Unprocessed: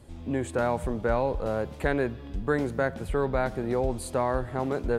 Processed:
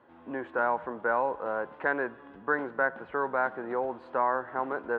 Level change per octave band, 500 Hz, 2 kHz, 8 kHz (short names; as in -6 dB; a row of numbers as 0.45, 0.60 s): -4.0 dB, +4.0 dB, under -35 dB